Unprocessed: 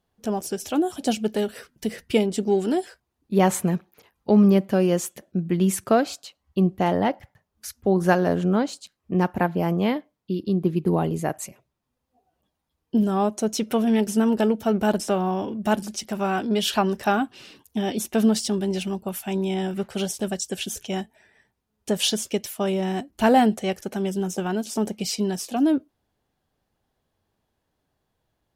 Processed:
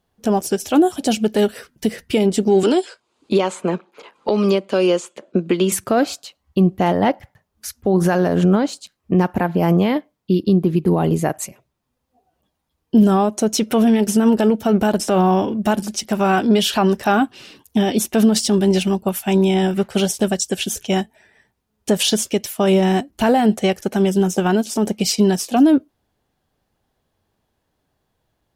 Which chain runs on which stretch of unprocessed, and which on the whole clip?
0:02.63–0:05.72: loudspeaker in its box 410–7,800 Hz, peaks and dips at 740 Hz −7 dB, 1,800 Hz −9 dB, 5,700 Hz −7 dB + multiband upward and downward compressor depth 100%
whole clip: boost into a limiter +17 dB; expander for the loud parts 1.5 to 1, over −20 dBFS; level −4.5 dB

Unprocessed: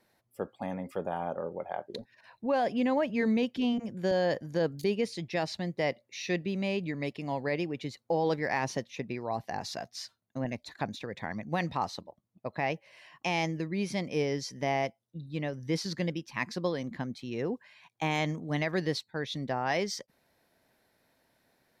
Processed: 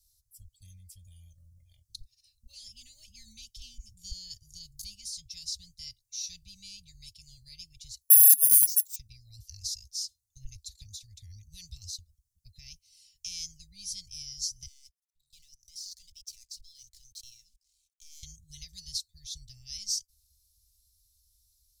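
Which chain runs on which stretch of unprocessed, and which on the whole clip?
0:08.01–0:08.96: high-pass filter 310 Hz + bad sample-rate conversion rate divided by 4×, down none, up zero stuff + expander for the loud parts, over −31 dBFS
0:14.66–0:18.23: high-pass filter 1,400 Hz 6 dB per octave + leveller curve on the samples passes 2 + output level in coarse steps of 24 dB
whole clip: inverse Chebyshev band-stop filter 260–1,600 Hz, stop band 70 dB; high-shelf EQ 6,100 Hz −9 dB; comb filter 3.4 ms, depth 56%; level +15.5 dB

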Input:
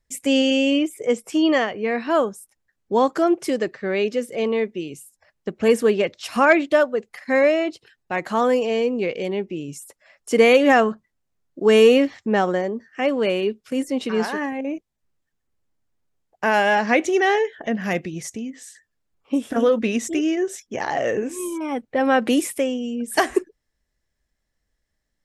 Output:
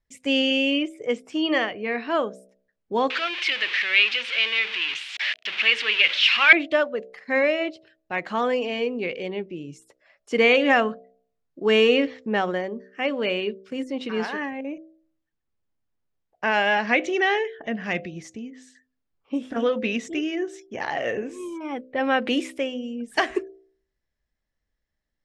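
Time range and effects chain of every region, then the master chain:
0:03.10–0:06.53: converter with a step at zero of −23.5 dBFS + resonant band-pass 2,700 Hz, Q 1.2 + parametric band 2,900 Hz +11.5 dB 2.4 octaves
whole clip: dynamic equaliser 2,700 Hz, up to +7 dB, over −37 dBFS, Q 0.91; low-pass filter 4,900 Hz 12 dB per octave; hum removal 64.14 Hz, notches 11; level −5 dB

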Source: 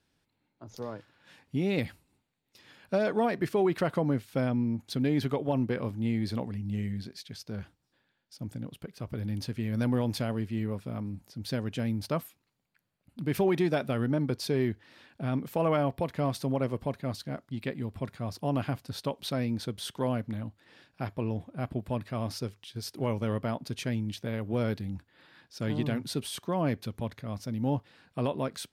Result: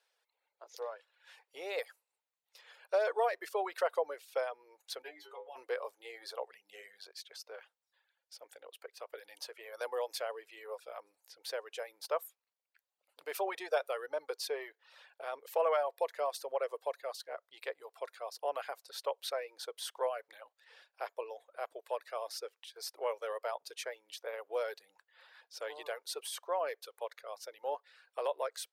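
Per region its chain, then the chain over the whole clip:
0:05.02–0:05.56: stiff-string resonator 99 Hz, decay 0.45 s, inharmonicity 0.002 + background raised ahead of every attack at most 39 dB per second
whole clip: elliptic high-pass filter 470 Hz, stop band 50 dB; reverb reduction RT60 0.75 s; dynamic equaliser 2,800 Hz, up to −4 dB, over −52 dBFS, Q 0.93

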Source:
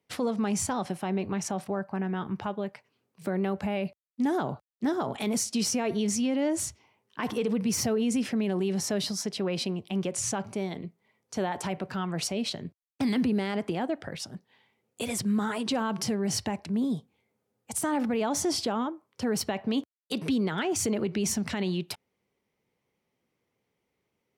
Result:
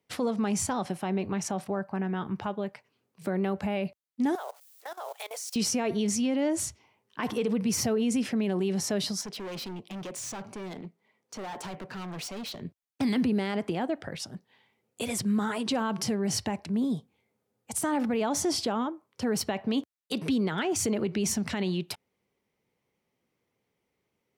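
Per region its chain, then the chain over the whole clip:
0:04.35–0:05.56: spike at every zero crossing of −35 dBFS + Butterworth high-pass 480 Hz 48 dB per octave + output level in coarse steps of 19 dB
0:09.21–0:12.62: high-pass filter 170 Hz + high-shelf EQ 8,600 Hz −6 dB + hard clipping −35.5 dBFS
whole clip: no processing

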